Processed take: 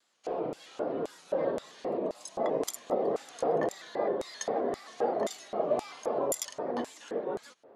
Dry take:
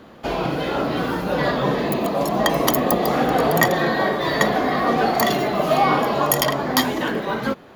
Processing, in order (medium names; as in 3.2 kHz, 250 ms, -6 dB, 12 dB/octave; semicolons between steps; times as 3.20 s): steep low-pass 11 kHz 36 dB/octave; LFO band-pass square 1.9 Hz 480–7600 Hz; vibrato with a chosen wave square 3.8 Hz, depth 100 cents; trim -4 dB